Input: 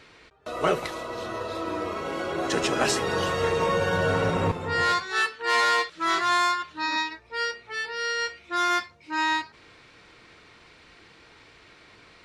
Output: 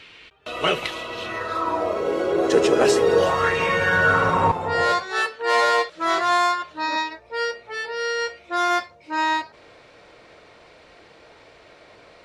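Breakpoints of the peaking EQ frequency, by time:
peaking EQ +13.5 dB 0.88 oct
1.22 s 2.9 kHz
2.04 s 440 Hz
3.17 s 440 Hz
3.59 s 2.5 kHz
4.86 s 600 Hz

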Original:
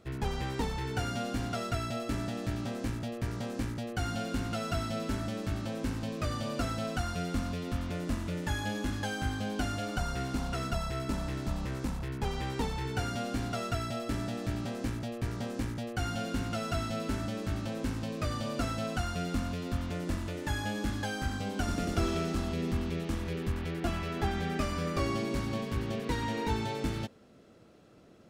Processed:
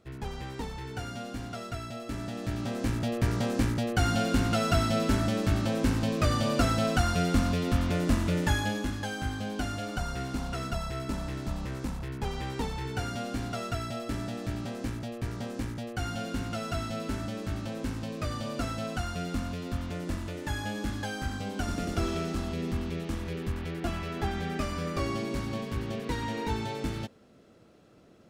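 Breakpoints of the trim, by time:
1.98 s -4 dB
3.16 s +7.5 dB
8.43 s +7.5 dB
8.96 s 0 dB

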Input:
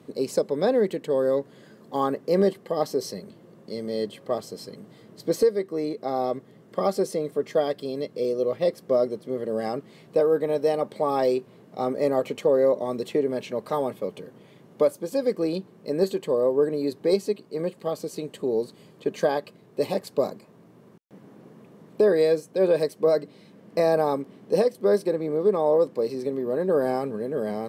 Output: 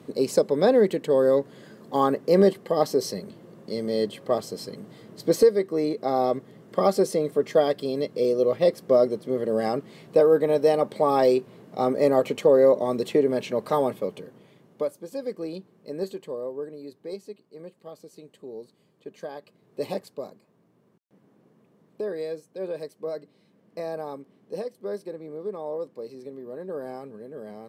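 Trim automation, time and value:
13.87 s +3 dB
14.91 s -7.5 dB
16.08 s -7.5 dB
16.81 s -14 dB
19.31 s -14 dB
19.93 s -3 dB
20.16 s -11.5 dB

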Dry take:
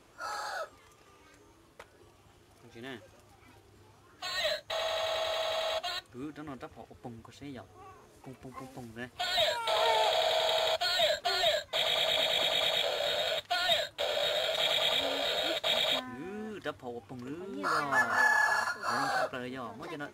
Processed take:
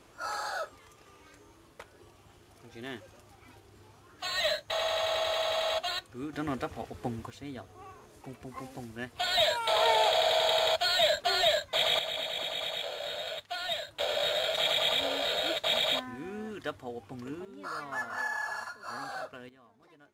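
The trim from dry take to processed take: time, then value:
+2.5 dB
from 6.33 s +9.5 dB
from 7.30 s +2.5 dB
from 11.99 s -5.5 dB
from 13.88 s +1 dB
from 17.45 s -8 dB
from 19.49 s -19 dB

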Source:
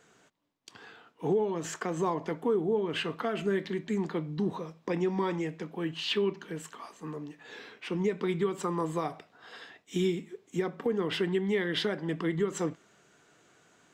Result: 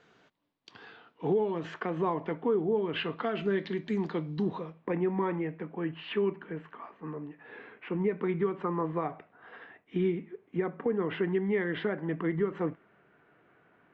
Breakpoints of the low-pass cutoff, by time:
low-pass 24 dB/octave
0.84 s 4.7 kHz
2.02 s 3.1 kHz
2.75 s 3.1 kHz
3.82 s 5 kHz
4.40 s 5 kHz
4.91 s 2.3 kHz

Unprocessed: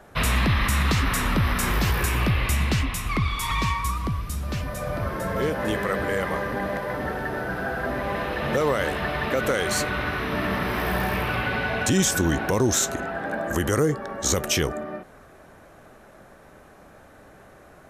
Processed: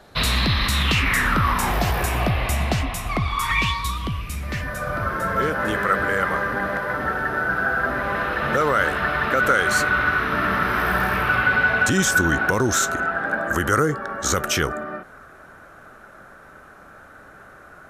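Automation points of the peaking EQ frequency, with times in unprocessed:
peaking EQ +13.5 dB 0.52 oct
0.72 s 4.1 kHz
1.76 s 700 Hz
3.26 s 700 Hz
3.76 s 4.3 kHz
4.86 s 1.4 kHz

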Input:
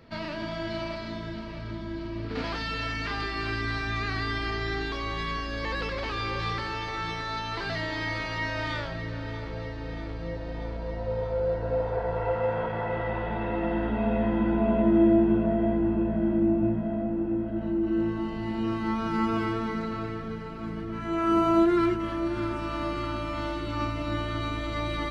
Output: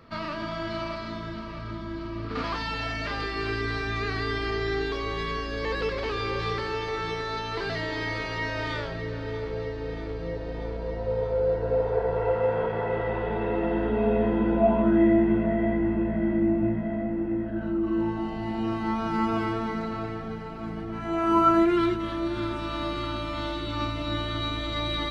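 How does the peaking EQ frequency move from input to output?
peaking EQ +12.5 dB 0.26 oct
2.45 s 1.2 kHz
3.35 s 430 Hz
14.50 s 430 Hz
15.01 s 2 kHz
17.38 s 2 kHz
18.22 s 760 Hz
21.26 s 760 Hz
21.85 s 3.7 kHz

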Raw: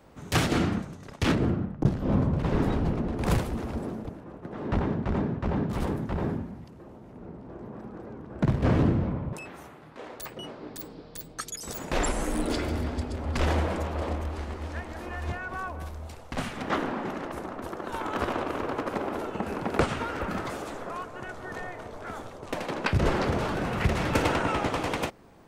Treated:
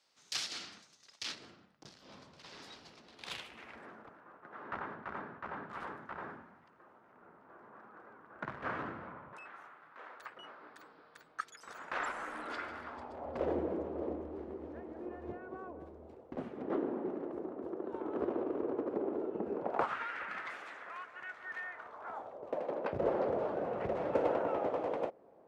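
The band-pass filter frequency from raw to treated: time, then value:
band-pass filter, Q 2.3
3.03 s 4.9 kHz
4.02 s 1.4 kHz
12.83 s 1.4 kHz
13.58 s 380 Hz
19.53 s 380 Hz
20.05 s 1.9 kHz
21.60 s 1.9 kHz
22.45 s 550 Hz

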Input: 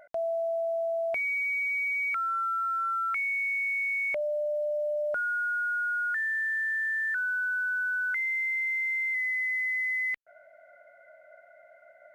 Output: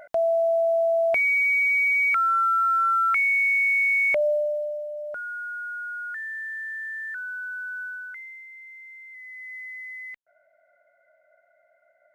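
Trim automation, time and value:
4.29 s +8 dB
4.88 s -4 dB
7.83 s -4 dB
8.47 s -15 dB
9.09 s -15 dB
9.55 s -8.5 dB

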